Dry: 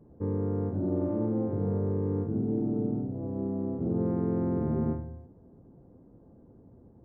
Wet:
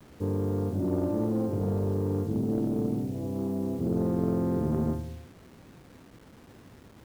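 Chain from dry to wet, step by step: added harmonics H 2 -9 dB, 4 -26 dB, 5 -26 dB, 8 -45 dB, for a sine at -17.5 dBFS; bit-crush 9-bit

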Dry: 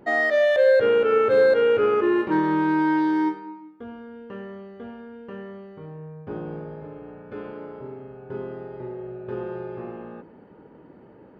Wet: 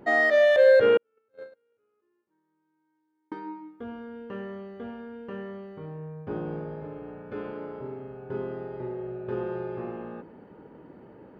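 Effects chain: 0.97–3.32 gate -12 dBFS, range -54 dB

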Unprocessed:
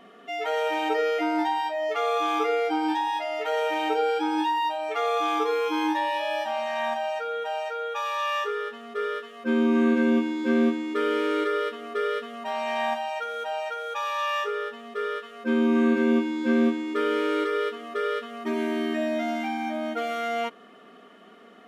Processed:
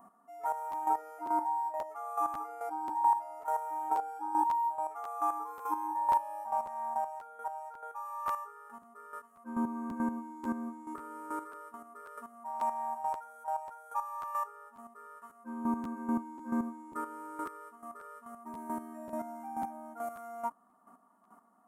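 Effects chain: EQ curve 280 Hz 0 dB, 430 Hz -15 dB, 950 Hz +13 dB, 1900 Hz -14 dB, 3500 Hz -28 dB, 9000 Hz +13 dB; chopper 2.3 Hz, depth 65%, duty 20%; 3.63–5.11 notch 4300 Hz, Q 11; crackling interface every 0.54 s, samples 512, repeat, from 0.71; gain -8 dB

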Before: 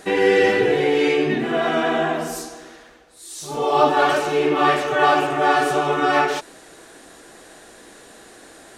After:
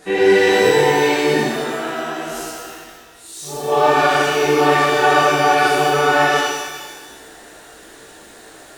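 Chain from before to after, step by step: 1.4–3.68 compressor, threshold -25 dBFS, peak gain reduction 8.5 dB; shimmer reverb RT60 1.3 s, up +12 st, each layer -8 dB, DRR -7 dB; gain -5 dB

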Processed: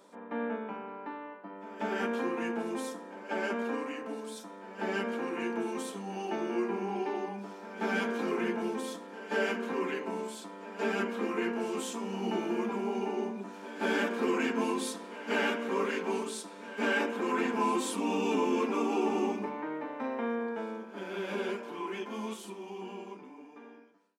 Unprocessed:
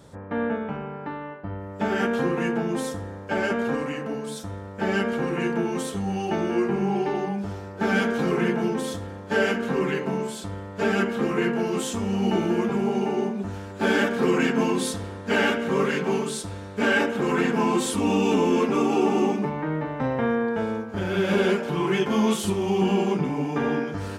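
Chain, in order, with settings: ending faded out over 4.62 s; steep high-pass 210 Hz 48 dB/oct; small resonant body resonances 990/2400 Hz, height 9 dB; pre-echo 0.185 s -16 dB; gain -8 dB

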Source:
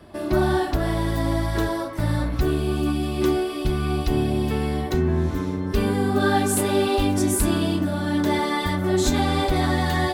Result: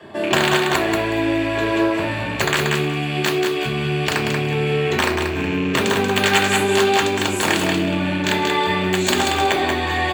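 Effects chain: rattling part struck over -33 dBFS, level -22 dBFS; tilt shelf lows +4.5 dB, about 1100 Hz; wrapped overs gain 8 dB; feedback echo 0.184 s, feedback 18%, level -5 dB; compressor 4:1, threshold -21 dBFS, peak gain reduction 9 dB; HPF 500 Hz 6 dB/oct; high shelf 4400 Hz +10 dB; reverb RT60 0.45 s, pre-delay 3 ms, DRR -2.5 dB; gain -3.5 dB

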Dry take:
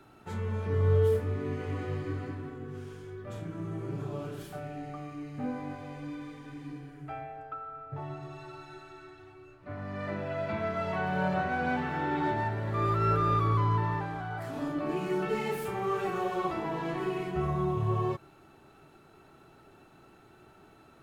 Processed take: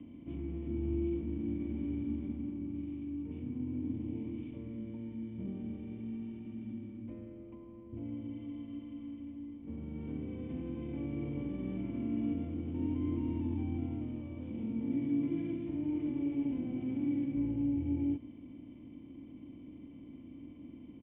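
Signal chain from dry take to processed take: per-bin compression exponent 0.6; pitch shift -4.5 st; vocal tract filter i

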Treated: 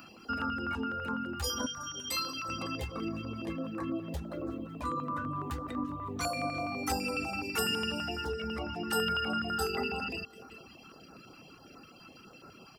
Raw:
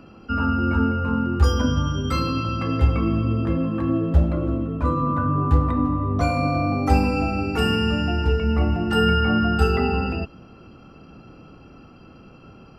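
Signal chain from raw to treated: feedback echo 0.185 s, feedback 54%, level -17 dB; compressor 1.5:1, threshold -33 dBFS, peak gain reduction 8 dB; 1.66–2.49 low shelf 470 Hz -10 dB; reverb removal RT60 0.68 s; RIAA curve recording; stepped notch 12 Hz 460–3100 Hz

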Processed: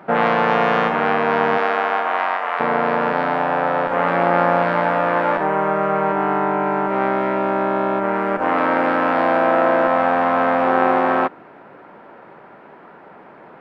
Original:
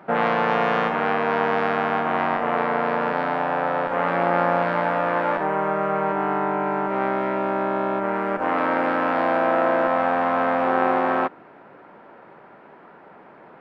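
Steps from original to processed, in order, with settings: 1.57–2.59 HPF 320 Hz -> 970 Hz 12 dB/oct; gain +4 dB

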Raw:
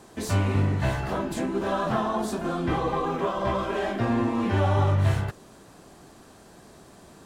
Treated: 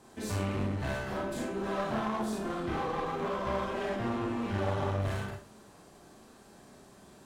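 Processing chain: Schroeder reverb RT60 0.35 s, combs from 29 ms, DRR -1 dB; one-sided clip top -24.5 dBFS; gain -8.5 dB

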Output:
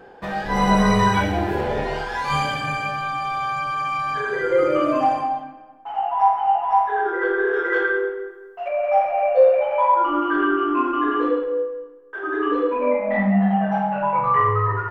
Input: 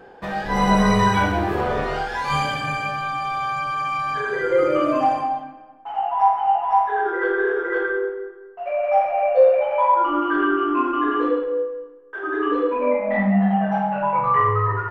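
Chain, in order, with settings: 1.24–2.1 spectral repair 730–1500 Hz after; 7.53–8.68 high shelf 2100 Hz +11 dB

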